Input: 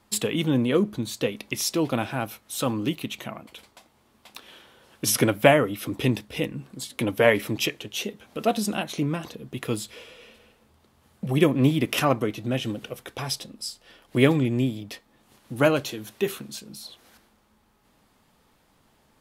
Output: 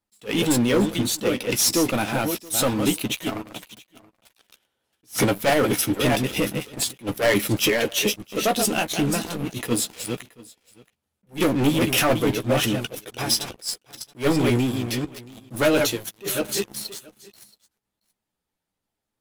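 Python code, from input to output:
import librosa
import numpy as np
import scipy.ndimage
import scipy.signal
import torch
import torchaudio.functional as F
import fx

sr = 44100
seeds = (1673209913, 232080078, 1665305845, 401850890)

p1 = fx.reverse_delay(x, sr, ms=342, wet_db=-7.5)
p2 = fx.peak_eq(p1, sr, hz=11000.0, db=5.5, octaves=1.8)
p3 = fx.hpss(p2, sr, part='harmonic', gain_db=-5)
p4 = fx.peak_eq(p3, sr, hz=1100.0, db=-5.5, octaves=0.22)
p5 = fx.leveller(p4, sr, passes=5)
p6 = fx.chorus_voices(p5, sr, voices=6, hz=0.25, base_ms=13, depth_ms=3.8, mix_pct=30)
p7 = p6 + fx.echo_single(p6, sr, ms=676, db=-22.5, dry=0)
p8 = fx.attack_slew(p7, sr, db_per_s=300.0)
y = F.gain(torch.from_numpy(p8), -8.0).numpy()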